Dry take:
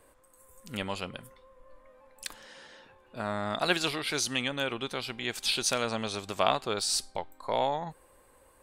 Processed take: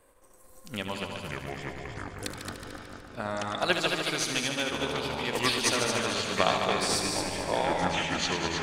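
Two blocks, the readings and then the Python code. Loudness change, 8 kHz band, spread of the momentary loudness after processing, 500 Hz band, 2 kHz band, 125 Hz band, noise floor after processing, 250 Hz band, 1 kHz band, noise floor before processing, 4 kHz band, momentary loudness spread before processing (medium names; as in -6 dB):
+2.0 dB, +2.0 dB, 14 LU, +2.5 dB, +4.5 dB, +5.0 dB, -55 dBFS, +4.0 dB, +2.5 dB, -61 dBFS, +2.5 dB, 15 LU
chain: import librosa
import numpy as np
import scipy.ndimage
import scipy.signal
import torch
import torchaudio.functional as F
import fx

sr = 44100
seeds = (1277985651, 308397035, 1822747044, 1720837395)

y = fx.echo_heads(x, sr, ms=74, heads='all three', feedback_pct=59, wet_db=-8)
y = fx.echo_pitch(y, sr, ms=218, semitones=-6, count=2, db_per_echo=-3.0)
y = fx.transient(y, sr, attack_db=4, sustain_db=-2)
y = F.gain(torch.from_numpy(y), -2.0).numpy()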